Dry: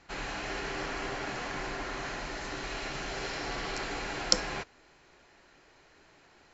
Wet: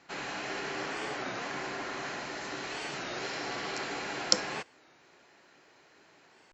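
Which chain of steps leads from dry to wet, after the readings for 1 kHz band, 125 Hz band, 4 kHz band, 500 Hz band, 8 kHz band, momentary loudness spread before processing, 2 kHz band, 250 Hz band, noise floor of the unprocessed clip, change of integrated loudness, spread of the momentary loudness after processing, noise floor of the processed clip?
0.0 dB, -5.0 dB, 0.0 dB, 0.0 dB, no reading, 10 LU, 0.0 dB, -0.5 dB, -61 dBFS, 0.0 dB, 10 LU, -62 dBFS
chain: high-pass 150 Hz 12 dB/octave; warped record 33 1/3 rpm, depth 160 cents

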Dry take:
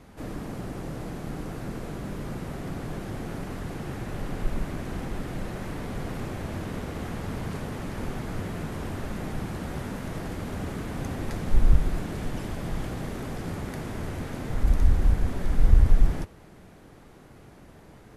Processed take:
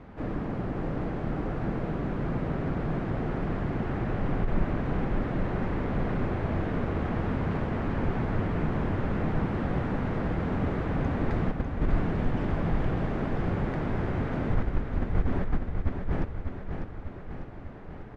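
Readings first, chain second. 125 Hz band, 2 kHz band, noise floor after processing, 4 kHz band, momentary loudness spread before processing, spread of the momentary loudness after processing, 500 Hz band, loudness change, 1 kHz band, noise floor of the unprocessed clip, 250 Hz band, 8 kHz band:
+1.5 dB, +2.5 dB, -40 dBFS, -5.0 dB, 12 LU, 4 LU, +4.5 dB, +1.0 dB, +4.0 dB, -50 dBFS, +4.0 dB, no reading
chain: low-pass 2.1 kHz 12 dB/octave; compressor with a negative ratio -24 dBFS, ratio -0.5; on a send: feedback delay 598 ms, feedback 57%, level -6.5 dB

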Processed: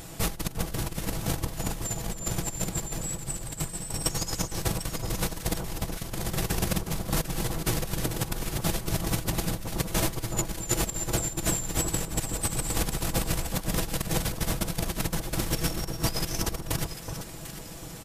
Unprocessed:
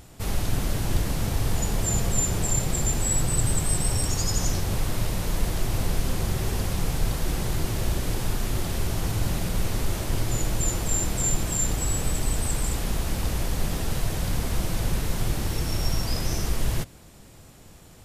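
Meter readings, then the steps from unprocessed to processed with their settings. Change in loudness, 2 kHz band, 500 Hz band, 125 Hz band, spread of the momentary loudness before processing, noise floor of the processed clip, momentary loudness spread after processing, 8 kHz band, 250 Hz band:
-3.0 dB, -0.5 dB, -1.0 dB, -4.5 dB, 5 LU, -41 dBFS, 5 LU, -3.0 dB, -1.0 dB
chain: treble shelf 6.7 kHz +3.5 dB; comb 6.1 ms, depth 51%; compressor with a negative ratio -27 dBFS, ratio -0.5; bass shelf 110 Hz -4.5 dB; on a send: echo whose repeats swap between lows and highs 373 ms, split 1.3 kHz, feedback 57%, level -6 dB

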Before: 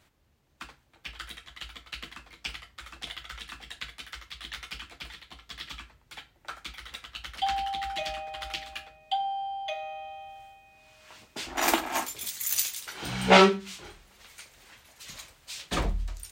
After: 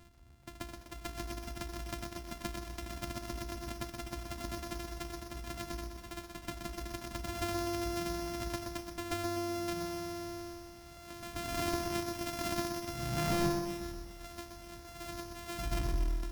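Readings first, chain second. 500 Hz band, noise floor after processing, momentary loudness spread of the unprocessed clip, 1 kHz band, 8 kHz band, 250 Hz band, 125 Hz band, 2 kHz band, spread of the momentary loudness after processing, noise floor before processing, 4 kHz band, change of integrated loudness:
-7.5 dB, -52 dBFS, 20 LU, -10.5 dB, -8.0 dB, -2.5 dB, -0.5 dB, -11.0 dB, 12 LU, -65 dBFS, -10.0 dB, -9.0 dB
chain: sorted samples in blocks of 128 samples; bass shelf 210 Hz +9 dB; reverse echo 135 ms -9.5 dB; overload inside the chain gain 17 dB; compression 2:1, threshold -44 dBFS, peak gain reduction 13.5 dB; peaking EQ 480 Hz -6.5 dB 0.82 oct; bit-crushed delay 125 ms, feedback 55%, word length 10-bit, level -6 dB; trim +4 dB

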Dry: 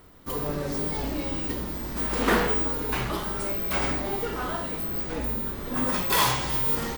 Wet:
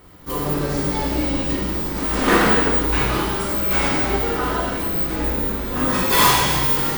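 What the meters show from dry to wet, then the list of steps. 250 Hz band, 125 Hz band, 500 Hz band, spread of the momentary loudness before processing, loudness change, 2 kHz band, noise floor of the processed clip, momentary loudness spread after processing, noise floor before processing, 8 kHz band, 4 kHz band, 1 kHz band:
+8.0 dB, +8.0 dB, +7.0 dB, 8 LU, +7.5 dB, +8.5 dB, -26 dBFS, 8 LU, -35 dBFS, +8.5 dB, +8.0 dB, +8.5 dB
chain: gated-style reverb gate 480 ms falling, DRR -4.5 dB; trim +2.5 dB

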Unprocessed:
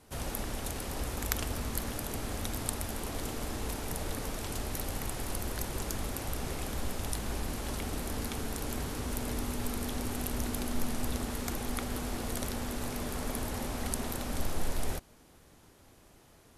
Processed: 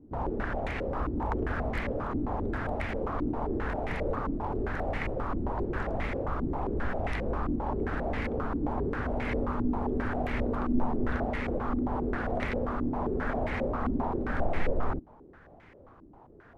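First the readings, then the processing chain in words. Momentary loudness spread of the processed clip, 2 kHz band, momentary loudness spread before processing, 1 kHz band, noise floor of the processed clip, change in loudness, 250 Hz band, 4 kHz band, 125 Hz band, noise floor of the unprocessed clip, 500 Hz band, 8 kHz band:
2 LU, +5.5 dB, 2 LU, +7.5 dB, -54 dBFS, +4.0 dB, +6.5 dB, -10.5 dB, +3.5 dB, -59 dBFS, +8.0 dB, under -25 dB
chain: step-sequenced low-pass 7.5 Hz 300–2100 Hz; trim +3 dB

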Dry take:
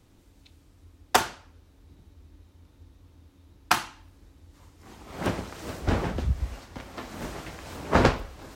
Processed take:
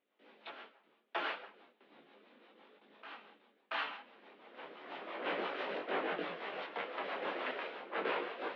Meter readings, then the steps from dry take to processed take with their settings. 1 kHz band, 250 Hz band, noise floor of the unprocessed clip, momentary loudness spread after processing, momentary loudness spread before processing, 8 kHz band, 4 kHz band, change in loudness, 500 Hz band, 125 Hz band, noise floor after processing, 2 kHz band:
-10.0 dB, -15.0 dB, -59 dBFS, 17 LU, 17 LU, under -40 dB, -9.5 dB, -11.5 dB, -8.0 dB, -33.0 dB, -74 dBFS, -6.5 dB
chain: gate with hold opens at -47 dBFS; dynamic bell 750 Hz, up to -3 dB, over -36 dBFS, Q 1; mistuned SSB -210 Hz 470–3400 Hz; reverse; compression 5:1, threshold -41 dBFS, peak gain reduction 21 dB; reverse; frequency shift +150 Hz; rotary cabinet horn 6 Hz; reverse echo 682 ms -16 dB; in parallel at -1 dB: peak limiter -38.5 dBFS, peak gain reduction 9.5 dB; on the sum: detune thickener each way 12 cents; trim +8 dB

